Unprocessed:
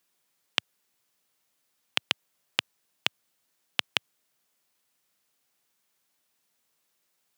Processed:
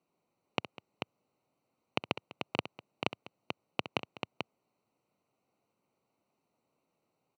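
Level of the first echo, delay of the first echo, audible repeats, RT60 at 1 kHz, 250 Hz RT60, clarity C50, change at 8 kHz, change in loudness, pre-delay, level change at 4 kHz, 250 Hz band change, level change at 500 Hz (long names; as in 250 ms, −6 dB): −13.0 dB, 65 ms, 3, no reverb audible, no reverb audible, no reverb audible, −15.0 dB, −8.0 dB, no reverb audible, −11.0 dB, +8.0 dB, +7.0 dB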